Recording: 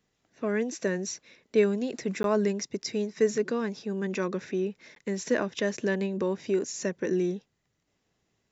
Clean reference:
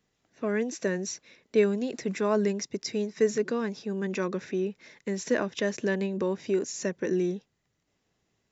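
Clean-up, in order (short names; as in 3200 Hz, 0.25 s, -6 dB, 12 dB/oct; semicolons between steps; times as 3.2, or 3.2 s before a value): interpolate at 2.23/4.95, 12 ms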